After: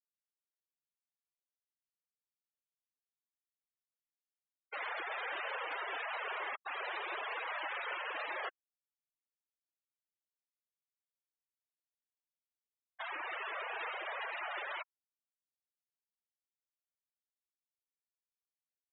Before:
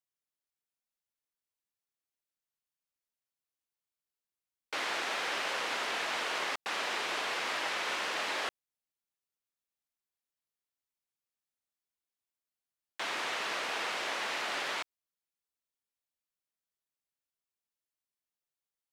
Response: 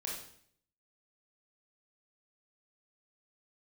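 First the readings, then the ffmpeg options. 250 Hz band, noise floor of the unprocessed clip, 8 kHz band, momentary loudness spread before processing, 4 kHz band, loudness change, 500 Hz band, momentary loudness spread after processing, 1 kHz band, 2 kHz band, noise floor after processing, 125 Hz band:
-12.5 dB, under -85 dBFS, under -35 dB, 4 LU, -12.0 dB, -6.0 dB, -5.0 dB, 4 LU, -4.0 dB, -5.0 dB, under -85 dBFS, n/a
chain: -filter_complex "[0:a]volume=31dB,asoftclip=hard,volume=-31dB,asplit=2[a][b];[b]adelay=599,lowpass=f=3k:p=1,volume=-14dB,asplit=2[c][d];[d]adelay=599,lowpass=f=3k:p=1,volume=0.26,asplit=2[e][f];[f]adelay=599,lowpass=f=3k:p=1,volume=0.26[g];[a][c][e][g]amix=inputs=4:normalize=0,afftfilt=real='re*gte(hypot(re,im),0.0316)':imag='im*gte(hypot(re,im),0.0316)':win_size=1024:overlap=0.75,volume=-1.5dB"

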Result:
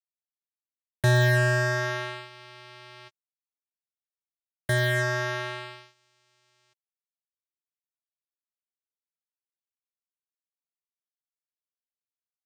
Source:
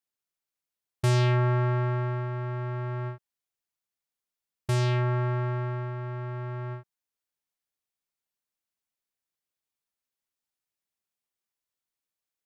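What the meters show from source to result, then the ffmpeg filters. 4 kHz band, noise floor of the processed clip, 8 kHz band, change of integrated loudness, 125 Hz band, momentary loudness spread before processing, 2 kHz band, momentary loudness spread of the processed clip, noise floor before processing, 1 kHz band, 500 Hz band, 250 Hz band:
+6.0 dB, under -85 dBFS, +6.0 dB, +3.5 dB, -2.0 dB, 13 LU, +11.5 dB, 19 LU, under -85 dBFS, -1.5 dB, +2.5 dB, n/a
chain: -af "superequalizer=8b=1.58:11b=2.82:13b=1.58:16b=2,acrusher=bits=3:mix=0:aa=0.5"

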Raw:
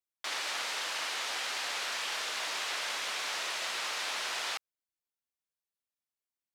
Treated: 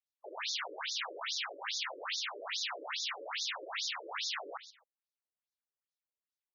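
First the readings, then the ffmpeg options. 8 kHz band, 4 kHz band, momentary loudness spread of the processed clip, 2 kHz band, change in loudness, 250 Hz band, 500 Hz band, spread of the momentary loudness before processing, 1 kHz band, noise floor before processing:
-5.5 dB, -2.5 dB, 4 LU, -5.5 dB, -3.5 dB, -1.5 dB, -0.5 dB, 1 LU, -4.5 dB, under -85 dBFS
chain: -af "aeval=exprs='0.075*(cos(1*acos(clip(val(0)/0.075,-1,1)))-cos(1*PI/2))+0.0119*(cos(3*acos(clip(val(0)/0.075,-1,1)))-cos(3*PI/2))+0.015*(cos(6*acos(clip(val(0)/0.075,-1,1)))-cos(6*PI/2))':c=same,aecho=1:1:132|264:0.141|0.0367,afftfilt=real='re*between(b*sr/1024,410*pow(5000/410,0.5+0.5*sin(2*PI*2.4*pts/sr))/1.41,410*pow(5000/410,0.5+0.5*sin(2*PI*2.4*pts/sr))*1.41)':imag='im*between(b*sr/1024,410*pow(5000/410,0.5+0.5*sin(2*PI*2.4*pts/sr))/1.41,410*pow(5000/410,0.5+0.5*sin(2*PI*2.4*pts/sr))*1.41)':win_size=1024:overlap=0.75,volume=5.5dB"

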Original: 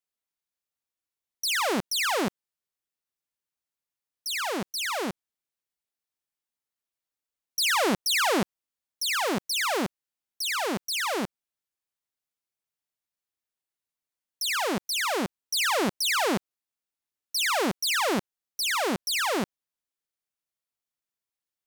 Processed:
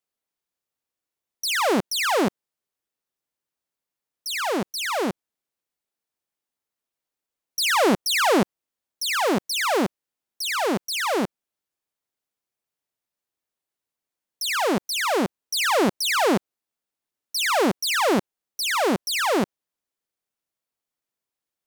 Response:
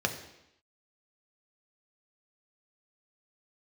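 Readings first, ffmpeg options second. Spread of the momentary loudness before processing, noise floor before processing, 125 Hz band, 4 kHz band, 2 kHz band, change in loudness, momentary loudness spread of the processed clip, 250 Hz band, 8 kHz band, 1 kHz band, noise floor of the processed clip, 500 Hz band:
8 LU, under -85 dBFS, +5.0 dB, +2.0 dB, +3.0 dB, +3.5 dB, 10 LU, +6.0 dB, +1.5 dB, +5.0 dB, under -85 dBFS, +6.5 dB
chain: -af "equalizer=f=410:w=0.41:g=5.5,volume=1.5dB"

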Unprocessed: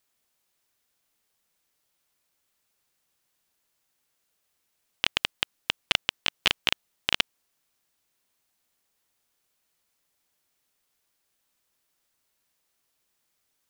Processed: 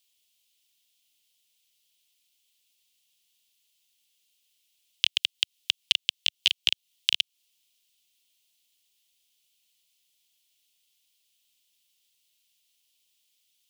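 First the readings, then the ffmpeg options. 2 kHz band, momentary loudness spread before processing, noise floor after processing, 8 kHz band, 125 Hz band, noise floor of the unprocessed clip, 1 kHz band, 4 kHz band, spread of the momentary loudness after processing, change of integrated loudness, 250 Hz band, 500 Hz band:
-3.5 dB, 5 LU, -77 dBFS, +1.0 dB, under -15 dB, -76 dBFS, under -15 dB, +3.0 dB, 5 LU, +1.5 dB, under -20 dB, under -15 dB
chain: -filter_complex "[0:a]highshelf=f=2.1k:t=q:w=3:g=13,acrossover=split=110|890[a][b][c];[a]acompressor=threshold=-53dB:ratio=4[d];[b]acompressor=threshold=-46dB:ratio=4[e];[c]acompressor=threshold=-10dB:ratio=4[f];[d][e][f]amix=inputs=3:normalize=0,volume=-10dB"

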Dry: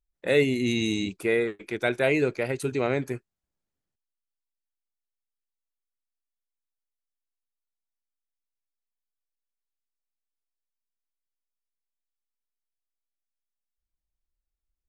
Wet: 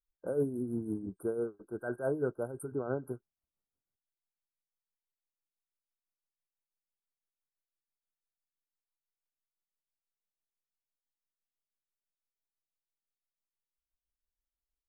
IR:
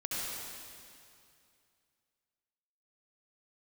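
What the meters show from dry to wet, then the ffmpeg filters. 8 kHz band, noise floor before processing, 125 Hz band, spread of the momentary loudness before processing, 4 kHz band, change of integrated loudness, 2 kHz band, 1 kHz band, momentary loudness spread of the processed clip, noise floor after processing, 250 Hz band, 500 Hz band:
-14.0 dB, under -85 dBFS, -9.0 dB, 7 LU, under -40 dB, -10.0 dB, -19.5 dB, -10.5 dB, 7 LU, under -85 dBFS, -9.0 dB, -9.0 dB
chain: -af "afftfilt=real='re*(1-between(b*sr/4096,1600,8500))':imag='im*(1-between(b*sr/4096,1600,8500))':win_size=4096:overlap=0.75,tremolo=f=6:d=0.64,volume=-6dB"

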